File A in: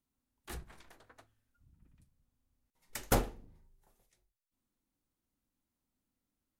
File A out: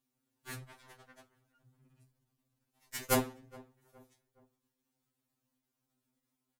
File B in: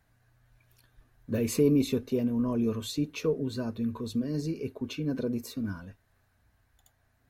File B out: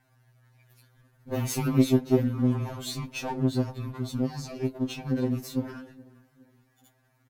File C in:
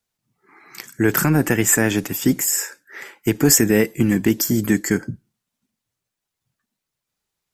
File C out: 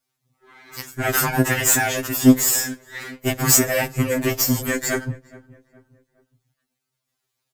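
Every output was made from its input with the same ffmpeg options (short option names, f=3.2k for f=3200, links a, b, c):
-filter_complex "[0:a]aeval=exprs='if(lt(val(0),0),0.251*val(0),val(0))':c=same,asplit=2[a][b];[b]adelay=417,lowpass=f=1.6k:p=1,volume=-22dB,asplit=2[c][d];[d]adelay=417,lowpass=f=1.6k:p=1,volume=0.44,asplit=2[e][f];[f]adelay=417,lowpass=f=1.6k:p=1,volume=0.44[g];[c][e][g]amix=inputs=3:normalize=0[h];[a][h]amix=inputs=2:normalize=0,apsyclip=12dB,highpass=f=52:p=1,afftfilt=real='re*2.45*eq(mod(b,6),0)':imag='im*2.45*eq(mod(b,6),0)':win_size=2048:overlap=0.75,volume=-4dB"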